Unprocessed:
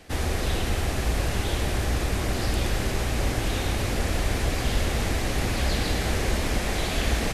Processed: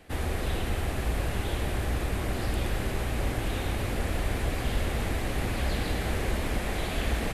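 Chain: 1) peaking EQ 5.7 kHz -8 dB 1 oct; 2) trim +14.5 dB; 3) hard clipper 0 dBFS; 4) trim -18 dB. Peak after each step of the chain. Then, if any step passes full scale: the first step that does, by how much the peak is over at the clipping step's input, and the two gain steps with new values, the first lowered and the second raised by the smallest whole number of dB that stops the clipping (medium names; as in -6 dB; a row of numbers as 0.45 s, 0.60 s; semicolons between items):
-11.5 dBFS, +3.0 dBFS, 0.0 dBFS, -18.0 dBFS; step 2, 3.0 dB; step 2 +11.5 dB, step 4 -15 dB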